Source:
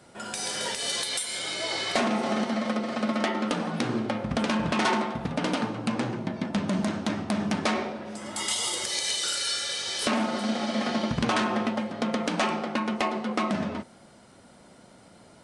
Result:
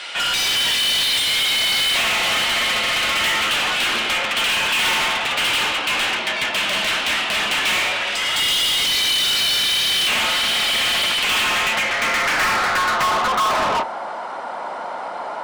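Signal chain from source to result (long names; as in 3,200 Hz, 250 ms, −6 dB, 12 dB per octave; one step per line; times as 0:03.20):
band-pass filter sweep 2,900 Hz → 910 Hz, 0:11.45–0:13.84
mid-hump overdrive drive 37 dB, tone 6,800 Hz, clips at −17.5 dBFS
mains-hum notches 50/100 Hz
level +5.5 dB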